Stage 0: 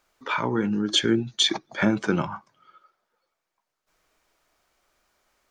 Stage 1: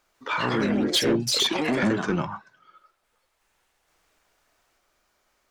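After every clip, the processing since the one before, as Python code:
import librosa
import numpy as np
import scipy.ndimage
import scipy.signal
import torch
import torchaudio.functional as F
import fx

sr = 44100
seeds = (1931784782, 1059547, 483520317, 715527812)

y = fx.echo_pitch(x, sr, ms=148, semitones=3, count=3, db_per_echo=-3.0)
y = 10.0 ** (-15.5 / 20.0) * np.tanh(y / 10.0 ** (-15.5 / 20.0))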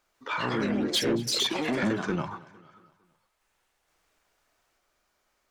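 y = fx.echo_feedback(x, sr, ms=228, feedback_pct=49, wet_db=-21.0)
y = y * librosa.db_to_amplitude(-4.0)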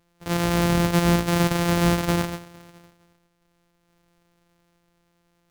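y = np.r_[np.sort(x[:len(x) // 256 * 256].reshape(-1, 256), axis=1).ravel(), x[len(x) // 256 * 256:]]
y = y * librosa.db_to_amplitude(7.0)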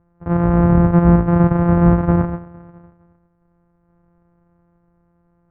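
y = scipy.signal.sosfilt(scipy.signal.butter(4, 1400.0, 'lowpass', fs=sr, output='sos'), x)
y = fx.peak_eq(y, sr, hz=73.0, db=10.5, octaves=2.3)
y = y * librosa.db_to_amplitude(4.0)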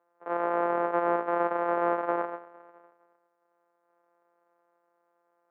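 y = scipy.signal.sosfilt(scipy.signal.butter(4, 450.0, 'highpass', fs=sr, output='sos'), x)
y = y * librosa.db_to_amplitude(-3.5)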